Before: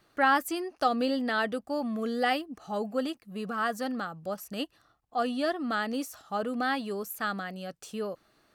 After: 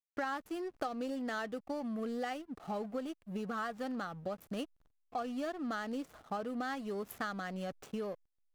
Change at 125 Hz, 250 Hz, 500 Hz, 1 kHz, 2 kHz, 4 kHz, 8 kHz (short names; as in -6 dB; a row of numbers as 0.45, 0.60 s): -3.0, -6.5, -7.5, -10.0, -11.0, -12.0, -11.0 dB